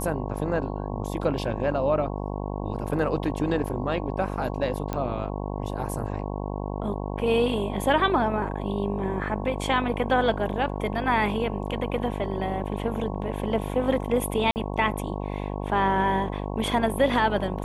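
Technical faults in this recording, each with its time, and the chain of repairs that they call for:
buzz 50 Hz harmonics 22 -31 dBFS
4.93 pop -16 dBFS
14.51–14.56 gap 49 ms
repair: de-click; de-hum 50 Hz, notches 22; interpolate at 14.51, 49 ms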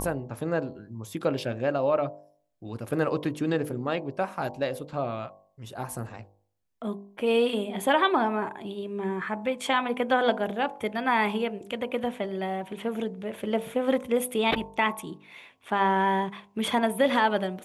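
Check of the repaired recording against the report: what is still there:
none

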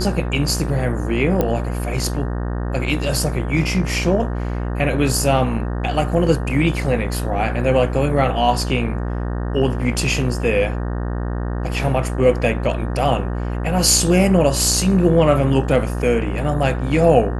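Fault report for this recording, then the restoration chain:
buzz 60 Hz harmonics 31 -23 dBFS
1.41 pop -6 dBFS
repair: de-click; de-hum 60 Hz, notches 31

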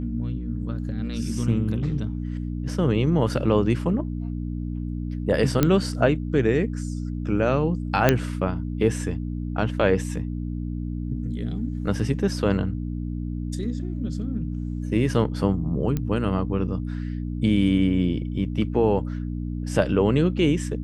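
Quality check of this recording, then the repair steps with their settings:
hum 60 Hz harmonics 5 -29 dBFS
5.63 pop -5 dBFS
8.09 pop -3 dBFS
15.97 pop -14 dBFS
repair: de-click; de-hum 60 Hz, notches 5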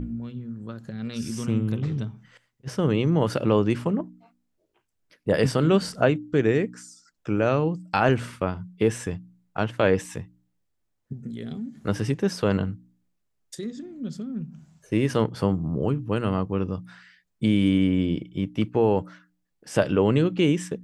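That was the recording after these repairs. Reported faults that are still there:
5.63 pop

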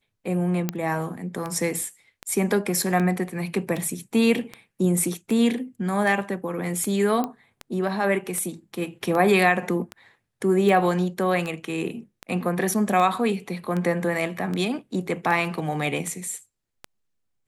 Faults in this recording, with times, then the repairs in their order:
tick 78 rpm -17 dBFS
0.69 pop -14 dBFS
7.24 pop -14 dBFS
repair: de-click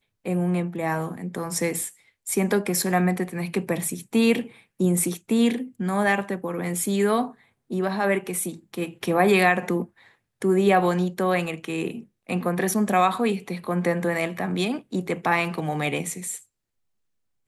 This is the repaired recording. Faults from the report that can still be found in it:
none

